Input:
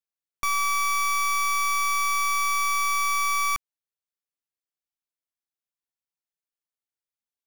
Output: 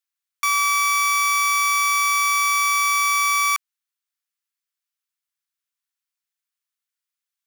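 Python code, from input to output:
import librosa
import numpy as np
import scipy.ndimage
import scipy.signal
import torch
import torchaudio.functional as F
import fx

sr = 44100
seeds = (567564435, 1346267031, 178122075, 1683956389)

y = scipy.signal.sosfilt(scipy.signal.butter(4, 1100.0, 'highpass', fs=sr, output='sos'), x)
y = F.gain(torch.from_numpy(y), 6.5).numpy()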